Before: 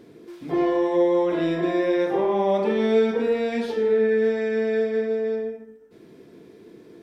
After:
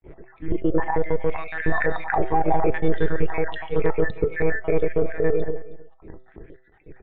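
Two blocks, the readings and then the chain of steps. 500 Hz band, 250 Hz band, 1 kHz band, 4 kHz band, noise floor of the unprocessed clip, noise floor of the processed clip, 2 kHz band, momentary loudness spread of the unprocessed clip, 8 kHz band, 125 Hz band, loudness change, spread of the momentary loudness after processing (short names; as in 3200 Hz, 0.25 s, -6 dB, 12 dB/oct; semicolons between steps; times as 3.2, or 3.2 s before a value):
-3.5 dB, -4.0 dB, +3.5 dB, -8.0 dB, -49 dBFS, -55 dBFS, +5.0 dB, 6 LU, n/a, +8.5 dB, -2.5 dB, 6 LU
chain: random spectral dropouts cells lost 61%; thirty-one-band EQ 160 Hz +9 dB, 400 Hz +5 dB, 800 Hz +10 dB; monotone LPC vocoder at 8 kHz 160 Hz; in parallel at -8 dB: soft clip -16 dBFS, distortion -11 dB; on the sum: limiter -11 dBFS, peak gain reduction 11 dB; synth low-pass 1900 Hz, resonance Q 2.7; low shelf 110 Hz +7.5 dB; resonator 660 Hz, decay 0.44 s, mix 70%; de-hum 127 Hz, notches 16; on a send: echo 0.315 s -20 dB; on the sum: gain +8 dB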